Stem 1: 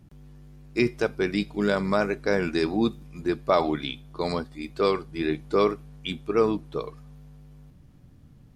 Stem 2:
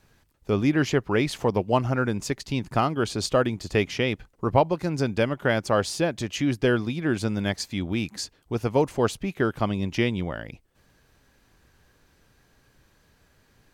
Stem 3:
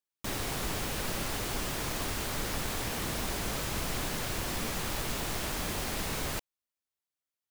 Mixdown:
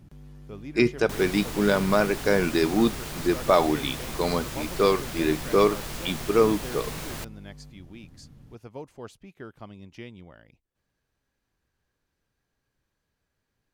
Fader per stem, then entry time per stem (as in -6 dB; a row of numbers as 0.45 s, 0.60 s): +2.0 dB, -18.0 dB, -2.0 dB; 0.00 s, 0.00 s, 0.85 s